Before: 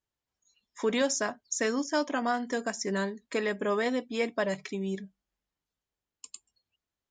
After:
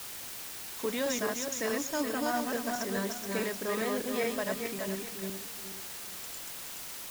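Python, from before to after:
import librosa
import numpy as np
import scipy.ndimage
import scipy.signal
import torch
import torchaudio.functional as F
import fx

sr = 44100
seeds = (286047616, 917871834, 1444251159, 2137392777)

y = fx.reverse_delay_fb(x, sr, ms=212, feedback_pct=53, wet_db=-1.0)
y = fx.quant_dither(y, sr, seeds[0], bits=6, dither='triangular')
y = fx.notch(y, sr, hz=5900.0, q=9.4, at=(1.86, 2.32))
y = y * 10.0 ** (-6.0 / 20.0)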